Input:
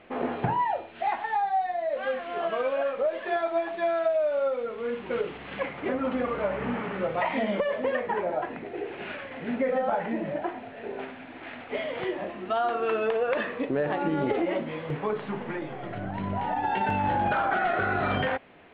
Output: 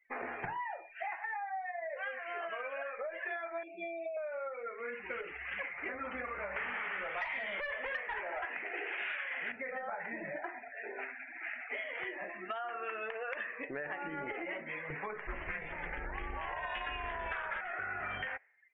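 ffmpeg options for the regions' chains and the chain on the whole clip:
-filter_complex "[0:a]asettb=1/sr,asplit=3[a][b][c];[a]atrim=end=3.634[d];[b]atrim=start=3.63:end=4.17,asetpts=PTS-STARTPTS,afade=t=in:d=0.004:c=qsin,afade=t=out:st=0.536:d=0.004:c=qsin,lowshelf=f=120:t=q:w=3:g=-13,acrossover=split=3600[e][f];[f]acompressor=threshold=-60dB:ratio=4:attack=1:release=60[g];[e][g]amix=inputs=2:normalize=0,asuperstop=centerf=1200:order=12:qfactor=0.71[h];[c]atrim=start=4.166[i];[d][h]acrossfade=d=0.004:c1=hsin:c2=qsin[j];[j][i]acrossfade=d=0.004:c1=qsin:c2=hsin,asettb=1/sr,asplit=3[k][l][m];[k]atrim=end=6.564[n];[l]atrim=start=6.56:end=9.52,asetpts=PTS-STARTPTS,afade=t=in:d=0.004:c=qsin,afade=t=out:st=2.956:d=0.004:c=qsin,highshelf=f=3.3k:g=8,asplit=2[o][p];[p]highpass=f=720:p=1,volume=18dB,asoftclip=type=tanh:threshold=-12.5dB[q];[o][q]amix=inputs=2:normalize=0,lowpass=f=2.7k:p=1,volume=-6dB[r];[m]atrim=start=9.516[s];[n][r]acrossfade=d=0.004:c1=hsin:c2=qsin[t];[t][s]acrossfade=d=0.004:c1=qsin:c2=hsin,asettb=1/sr,asplit=3[u][v][w];[u]atrim=end=15.274[x];[v]atrim=start=15.27:end=17.61,asetpts=PTS-STARTPTS,afade=t=in:d=0.004:c=qsin,afade=t=out:st=2.336:d=0.004:c=qsin,acontrast=77,aeval=exprs='val(0)*sin(2*PI*160*n/s)':c=same,adynamicequalizer=threshold=0.0126:dfrequency=2000:dqfactor=0.7:tfrequency=2000:tqfactor=0.7:attack=5:release=100:ratio=0.375:range=2.5:mode=boostabove:tftype=highshelf[y];[w]atrim=start=17.606[z];[x][y]acrossfade=d=0.004:c1=hsin:c2=qsin[aa];[aa][z]acrossfade=d=0.004:c1=qsin:c2=hsin,equalizer=f=125:t=o:w=1:g=-12,equalizer=f=250:t=o:w=1:g=-11,equalizer=f=500:t=o:w=1:g=-7,equalizer=f=1k:t=o:w=1:g=-4,equalizer=f=2k:t=o:w=1:g=8,equalizer=f=4k:t=o:w=1:g=-6,afftdn=nr=36:nf=-43,acompressor=threshold=-38dB:ratio=6,volume=1dB"

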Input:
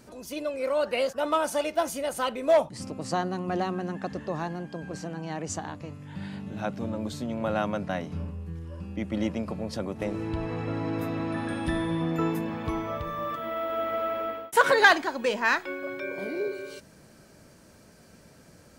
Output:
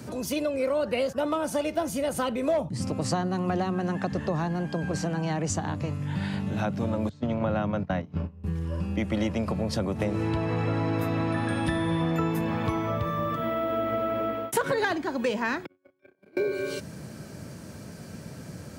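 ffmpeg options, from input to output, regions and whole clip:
-filter_complex "[0:a]asettb=1/sr,asplit=3[a][b][c];[a]atrim=end=7.094[d];[b]atrim=start=7.09:end=8.44,asetpts=PTS-STARTPTS,afade=t=in:d=0.004:c=qsin,afade=t=out:st=1.346:d=0.004:c=qsin,aemphasis=mode=reproduction:type=50kf,agate=range=-21dB:threshold=-33dB:ratio=16:release=100:detection=peak,lowpass=f=7.5k:w=0.5412,lowpass=f=7.5k:w=1.3066[e];[c]atrim=start=8.436[f];[d][e]acrossfade=d=0.004:c1=hsin:c2=qsin[g];[g][f]acrossfade=d=0.004:c1=qsin:c2=hsin,asettb=1/sr,asplit=3[h][i][j];[h]atrim=end=15.664[k];[i]atrim=start=15.66:end=16.37,asetpts=PTS-STARTPTS,afade=t=in:d=0.004:c=qsin,afade=t=out:st=0.706:d=0.004:c=qsin,agate=range=-50dB:threshold=-29dB:ratio=16:release=100:detection=peak,asplit=2[l][m];[m]adelay=30,volume=-7dB[n];[l][n]amix=inputs=2:normalize=0,atrim=end_sample=31311[o];[j]atrim=start=16.366[p];[k][o]acrossfade=d=0.004:c1=hsin:c2=qsin[q];[q][p]acrossfade=d=0.004:c1=qsin:c2=hsin,highpass=68,equalizer=f=120:w=0.61:g=9,acrossover=split=90|450[r][s][t];[r]acompressor=threshold=-45dB:ratio=4[u];[s]acompressor=threshold=-39dB:ratio=4[v];[t]acompressor=threshold=-38dB:ratio=4[w];[u][v][w]amix=inputs=3:normalize=0,volume=8dB"

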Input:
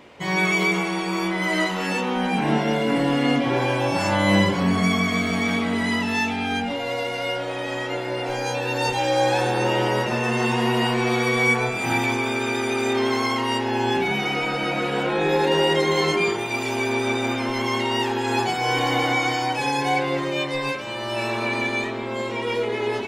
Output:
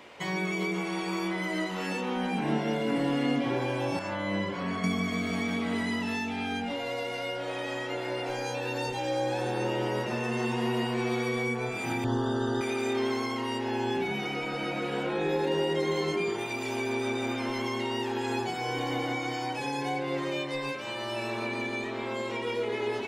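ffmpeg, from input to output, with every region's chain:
-filter_complex "[0:a]asettb=1/sr,asplit=3[a][b][c];[a]atrim=end=3.994[d];[b]atrim=start=3.99:end=4.84,asetpts=PTS-STARTPTS,afade=t=in:d=0.004:c=qsin,afade=t=out:st=0.846:d=0.004:c=qsin,lowpass=f=2k:p=1,lowshelf=f=460:g=-7.5,bandreject=f=820:w=7.8[e];[c]atrim=start=4.836[f];[d][e]acrossfade=d=0.004:c1=hsin:c2=qsin[g];[g][f]acrossfade=d=0.004:c1=qsin:c2=hsin,asettb=1/sr,asplit=3[h][i][j];[h]atrim=end=12.044[k];[i]atrim=start=12.04:end=12.61,asetpts=PTS-STARTPTS,afade=t=in:d=0.004:c=qsin,afade=t=out:st=0.566:d=0.004:c=qsin,asuperstop=centerf=2300:order=8:qfactor=2.3,aemphasis=mode=reproduction:type=bsi[l];[j]atrim=start=12.606[m];[k][l]acrossfade=d=0.004:c1=hsin:c2=qsin[n];[n][m]acrossfade=d=0.004:c1=qsin:c2=hsin,lowshelf=f=350:g=-9,acrossover=split=450[o][p];[p]acompressor=threshold=-34dB:ratio=6[q];[o][q]amix=inputs=2:normalize=0"

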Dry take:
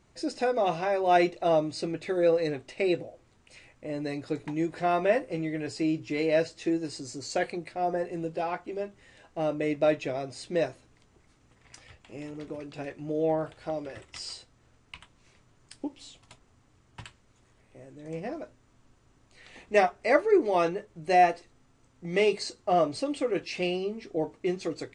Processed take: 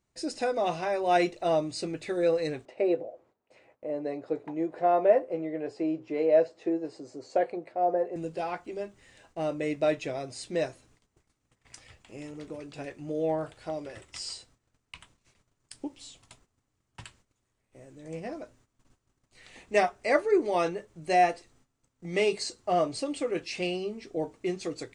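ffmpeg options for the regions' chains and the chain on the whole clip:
-filter_complex "[0:a]asettb=1/sr,asplit=3[a][b][c];[a]atrim=end=2.654[d];[b]atrim=start=2.65:end=8.16,asetpts=PTS-STARTPTS,afade=t=in:d=0.004:c=qsin,afade=t=out:st=5.506:d=0.004:c=qsin,acontrast=56,bandpass=f=580:t=q:w=1.4[e];[c]atrim=start=8.156[f];[d][e]acrossfade=d=0.004:c1=hsin:c2=qsin[g];[g][f]acrossfade=d=0.004:c1=qsin:c2=hsin,agate=range=-14dB:threshold=-59dB:ratio=16:detection=peak,highshelf=f=7.4k:g=10.5,volume=-2dB"

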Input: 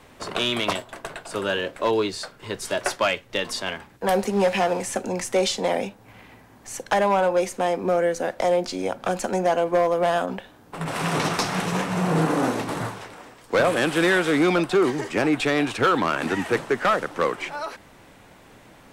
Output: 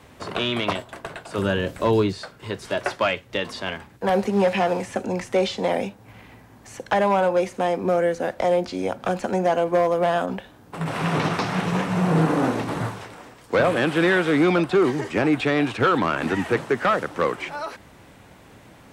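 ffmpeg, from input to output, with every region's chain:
-filter_complex "[0:a]asettb=1/sr,asplit=3[a][b][c];[a]atrim=end=1.384[d];[b]atrim=start=1.38:end=2.13,asetpts=PTS-STARTPTS,afade=t=in:d=0.004:c=qsin,afade=t=out:st=0.746:d=0.004:c=qsin,bass=f=250:g=10,treble=f=4k:g=13,acrossover=split=2500[e][f];[f]acompressor=threshold=-38dB:ratio=4:attack=1:release=60[g];[e][g]amix=inputs=2:normalize=0[h];[c]atrim=start=2.126[i];[d][h]acrossfade=d=0.004:c1=hsin:c2=qsin[j];[j][i]acrossfade=d=0.004:c1=qsin:c2=hsin,acrossover=split=4100[k][l];[l]acompressor=threshold=-45dB:ratio=4:attack=1:release=60[m];[k][m]amix=inputs=2:normalize=0,highpass=43,equalizer=f=68:w=0.4:g=5.5"

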